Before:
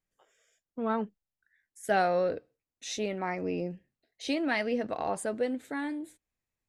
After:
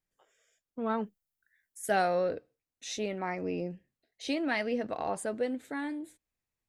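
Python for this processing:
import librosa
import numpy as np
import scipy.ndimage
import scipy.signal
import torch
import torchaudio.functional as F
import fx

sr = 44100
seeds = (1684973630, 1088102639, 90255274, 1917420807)

y = fx.high_shelf(x, sr, hz=8400.0, db=11.5, at=(0.85, 2.15))
y = y * librosa.db_to_amplitude(-1.5)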